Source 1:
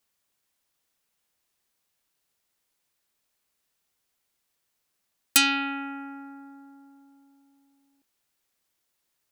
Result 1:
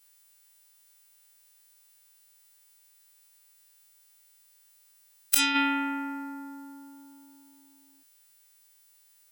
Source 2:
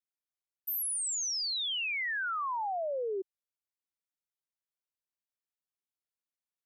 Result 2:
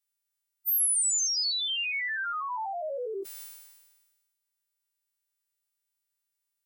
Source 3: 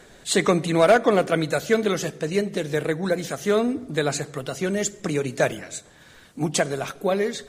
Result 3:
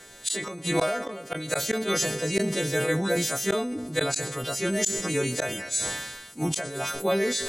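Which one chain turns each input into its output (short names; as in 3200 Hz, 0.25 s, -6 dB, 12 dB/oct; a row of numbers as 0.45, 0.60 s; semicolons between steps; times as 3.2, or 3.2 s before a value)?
frequency quantiser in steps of 2 st; flipped gate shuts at -10 dBFS, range -29 dB; sustainer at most 42 dB/s; match loudness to -27 LUFS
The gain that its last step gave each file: +4.5, 0.0, -2.0 dB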